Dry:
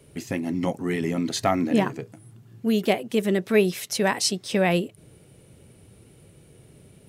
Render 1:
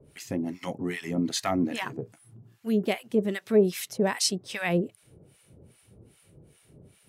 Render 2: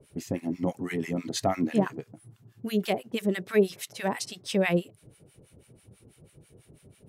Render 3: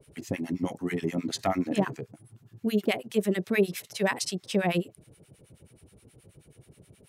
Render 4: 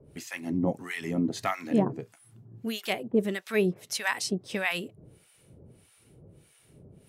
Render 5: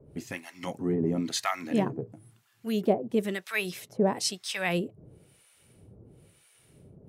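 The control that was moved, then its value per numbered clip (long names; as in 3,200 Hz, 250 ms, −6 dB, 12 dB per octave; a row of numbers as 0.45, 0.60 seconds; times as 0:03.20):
two-band tremolo in antiphase, speed: 2.5, 6.1, 9.4, 1.6, 1 Hertz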